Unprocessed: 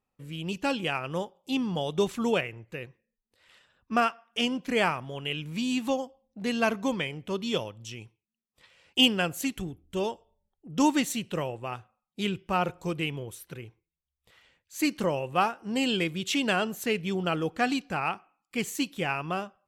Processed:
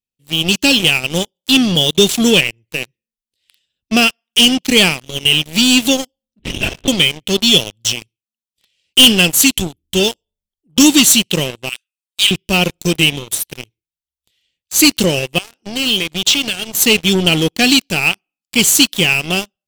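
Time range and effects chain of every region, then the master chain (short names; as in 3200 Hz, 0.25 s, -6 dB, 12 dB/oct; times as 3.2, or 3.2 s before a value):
6.39–6.88 block floating point 7-bit + resonator 55 Hz, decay 1.3 s, mix 70% + LPC vocoder at 8 kHz whisper
11.69–12.31 steep high-pass 1400 Hz 48 dB/oct + bell 8700 Hz +7.5 dB 0.24 oct
15.38–16.75 LPF 6500 Hz + compressor 10:1, threshold -32 dBFS
whole clip: EQ curve 370 Hz 0 dB, 1200 Hz -14 dB, 3100 Hz +14 dB; sample leveller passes 5; low shelf 400 Hz +4 dB; gain -5 dB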